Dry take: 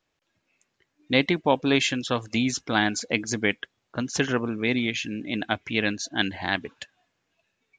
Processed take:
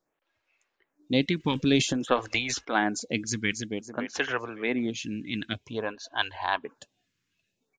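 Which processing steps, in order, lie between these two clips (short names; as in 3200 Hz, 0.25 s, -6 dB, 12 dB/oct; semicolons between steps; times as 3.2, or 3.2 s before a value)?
1.37–2.65 transient shaper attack +6 dB, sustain +10 dB; 3.21–3.62 echo throw 0.28 s, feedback 45%, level -5.5 dB; 5.53–6.64 thirty-one-band EQ 200 Hz -12 dB, 315 Hz -10 dB, 1000 Hz +11 dB, 2000 Hz -11 dB; photocell phaser 0.52 Hz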